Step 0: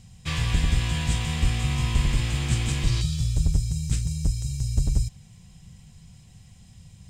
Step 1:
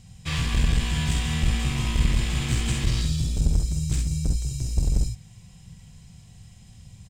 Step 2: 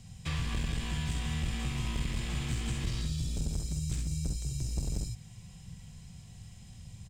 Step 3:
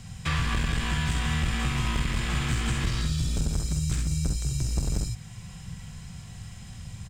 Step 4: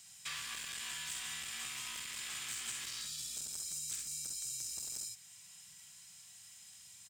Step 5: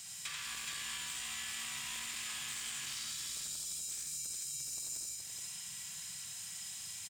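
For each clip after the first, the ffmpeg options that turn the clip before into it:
-filter_complex "[0:a]aeval=exprs='clip(val(0),-1,0.0708)':c=same,asplit=2[s0][s1];[s1]aecho=0:1:47|65:0.473|0.473[s2];[s0][s2]amix=inputs=2:normalize=0"
-filter_complex "[0:a]acrossover=split=98|1700[s0][s1][s2];[s0]acompressor=threshold=0.0224:ratio=4[s3];[s1]acompressor=threshold=0.0178:ratio=4[s4];[s2]acompressor=threshold=0.00794:ratio=4[s5];[s3][s4][s5]amix=inputs=3:normalize=0,volume=0.841"
-filter_complex "[0:a]equalizer=f=1400:t=o:w=1.1:g=8.5,asplit=2[s0][s1];[s1]alimiter=level_in=1.33:limit=0.0631:level=0:latency=1:release=487,volume=0.75,volume=0.794[s2];[s0][s2]amix=inputs=2:normalize=0,volume=1.33"
-af "aderivative,volume=0.841"
-af "acompressor=threshold=0.00355:ratio=12,aecho=1:1:86|422:0.631|0.631,volume=2.66"

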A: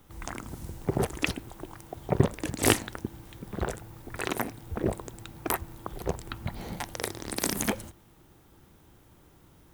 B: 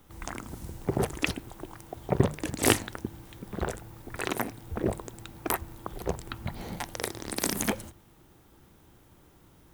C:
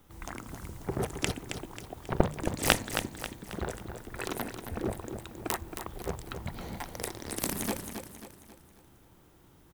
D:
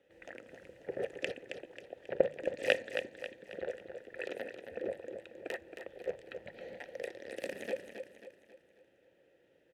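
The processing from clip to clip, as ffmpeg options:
-af "bandreject=f=50:t=h:w=6,bandreject=f=100:t=h:w=6,bandreject=f=150:t=h:w=6"
-filter_complex "[0:a]aeval=exprs='0.891*(cos(1*acos(clip(val(0)/0.891,-1,1)))-cos(1*PI/2))+0.224*(cos(7*acos(clip(val(0)/0.891,-1,1)))-cos(7*PI/2))':c=same,asplit=2[s0][s1];[s1]aecho=0:1:270|540|810|1080|1350:0.398|0.175|0.0771|0.0339|0.0149[s2];[s0][s2]amix=inputs=2:normalize=0"
-filter_complex "[0:a]asplit=3[s0][s1][s2];[s0]bandpass=f=530:t=q:w=8,volume=1[s3];[s1]bandpass=f=1840:t=q:w=8,volume=0.501[s4];[s2]bandpass=f=2480:t=q:w=8,volume=0.355[s5];[s3][s4][s5]amix=inputs=3:normalize=0,volume=2.24"

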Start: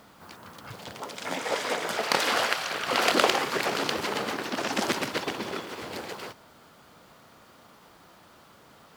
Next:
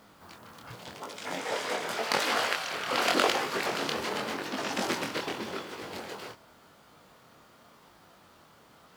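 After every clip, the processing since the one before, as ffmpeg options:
-af "flanger=delay=19:depth=7.3:speed=0.87"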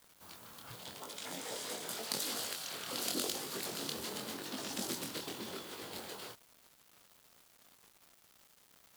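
-filter_complex "[0:a]acrossover=split=380|4600[s0][s1][s2];[s1]acompressor=threshold=0.0112:ratio=6[s3];[s0][s3][s2]amix=inputs=3:normalize=0,aexciter=amount=2.3:drive=3.7:freq=3200,acrusher=bits=7:mix=0:aa=0.000001,volume=0.473"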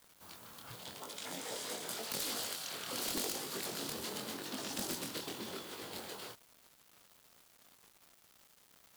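-af "aeval=exprs='(mod(26.6*val(0)+1,2)-1)/26.6':c=same"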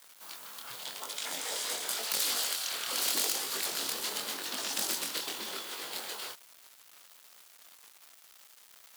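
-af "highpass=f=1100:p=1,volume=2.66"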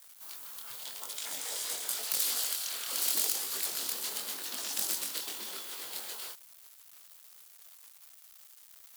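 -af "highshelf=f=6500:g=10,volume=0.501"

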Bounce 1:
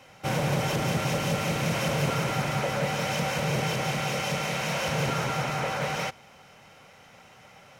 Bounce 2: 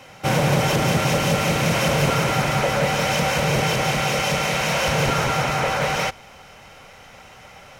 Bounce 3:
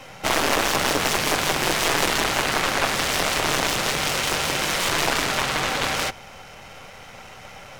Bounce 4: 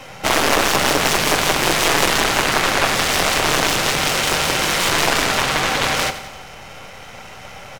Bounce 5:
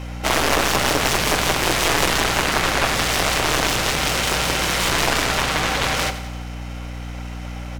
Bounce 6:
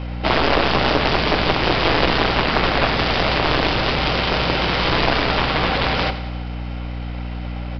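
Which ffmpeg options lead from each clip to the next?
-af "asubboost=boost=4.5:cutoff=63,volume=2.51"
-filter_complex "[0:a]aeval=exprs='if(lt(val(0),0),0.447*val(0),val(0))':c=same,aeval=exprs='0.422*(cos(1*acos(clip(val(0)/0.422,-1,1)))-cos(1*PI/2))+0.168*(cos(7*acos(clip(val(0)/0.422,-1,1)))-cos(7*PI/2))':c=same,acrossover=split=270[s0][s1];[s0]asoftclip=type=tanh:threshold=0.0355[s2];[s2][s1]amix=inputs=2:normalize=0"
-af "aecho=1:1:89|178|267|356|445|534:0.224|0.125|0.0702|0.0393|0.022|0.0123,volume=1.68"
-af "aeval=exprs='val(0)+0.0447*(sin(2*PI*60*n/s)+sin(2*PI*2*60*n/s)/2+sin(2*PI*3*60*n/s)/3+sin(2*PI*4*60*n/s)/4+sin(2*PI*5*60*n/s)/5)':c=same,volume=0.75"
-filter_complex "[0:a]asplit=2[s0][s1];[s1]acrusher=samples=20:mix=1:aa=0.000001,volume=0.501[s2];[s0][s2]amix=inputs=2:normalize=0,aresample=11025,aresample=44100"

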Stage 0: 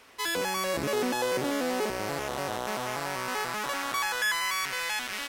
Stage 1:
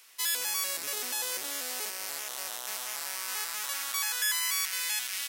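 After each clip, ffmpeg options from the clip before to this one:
-af "aderivative,volume=2"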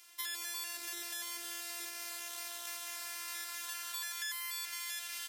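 -filter_complex "[0:a]afftfilt=real='hypot(re,im)*cos(PI*b)':imag='0':win_size=512:overlap=0.75,acrossover=split=1500|3700[s0][s1][s2];[s0]acompressor=threshold=0.00224:ratio=4[s3];[s1]acompressor=threshold=0.00501:ratio=4[s4];[s2]acompressor=threshold=0.01:ratio=4[s5];[s3][s4][s5]amix=inputs=3:normalize=0,volume=1.12"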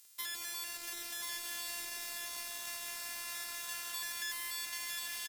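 -af "acrusher=bits=7:mix=0:aa=0.000001,aecho=1:1:1038:0.631,volume=0.891"

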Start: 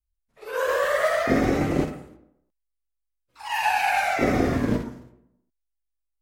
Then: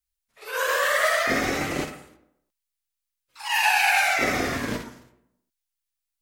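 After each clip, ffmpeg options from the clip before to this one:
-af "tiltshelf=f=920:g=-8.5"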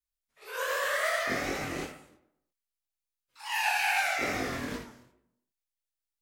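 -af "flanger=delay=19:depth=5.9:speed=2.5,volume=0.596"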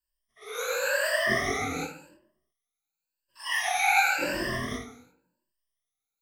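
-af "afftfilt=real='re*pow(10,22/40*sin(2*PI*(1.3*log(max(b,1)*sr/1024/100)/log(2)-(0.92)*(pts-256)/sr)))':imag='im*pow(10,22/40*sin(2*PI*(1.3*log(max(b,1)*sr/1024/100)/log(2)-(0.92)*(pts-256)/sr)))':win_size=1024:overlap=0.75,volume=0.841"

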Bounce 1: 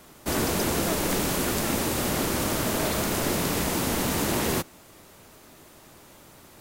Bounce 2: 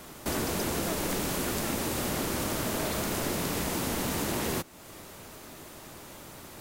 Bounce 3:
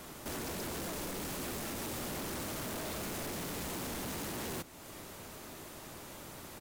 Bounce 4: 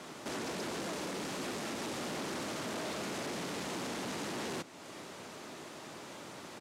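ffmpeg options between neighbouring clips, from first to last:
-af "acompressor=threshold=0.01:ratio=2,volume=1.68"
-af "alimiter=limit=0.075:level=0:latency=1:release=114,asoftclip=type=hard:threshold=0.0168,aecho=1:1:1042:0.0794,volume=0.794"
-af "highpass=170,lowpass=6700,volume=1.33"

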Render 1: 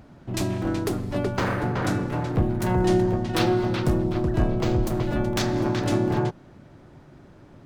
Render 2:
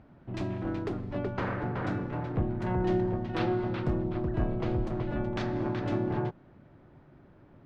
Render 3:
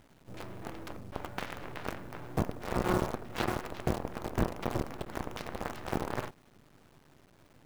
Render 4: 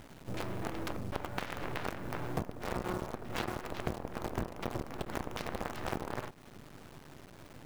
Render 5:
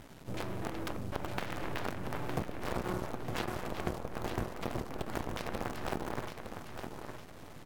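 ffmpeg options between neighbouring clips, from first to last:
-af "lowpass=2700,volume=0.447"
-af "aeval=exprs='0.2*(cos(1*acos(clip(val(0)/0.2,-1,1)))-cos(1*PI/2))+0.0501*(cos(7*acos(clip(val(0)/0.2,-1,1)))-cos(7*PI/2))':c=same,acrusher=bits=7:dc=4:mix=0:aa=0.000001"
-af "acompressor=threshold=0.00891:ratio=6,volume=2.66"
-af "aecho=1:1:911|1822|2733|3644:0.447|0.13|0.0376|0.0109" -ar 48000 -c:a libvorbis -b:a 64k

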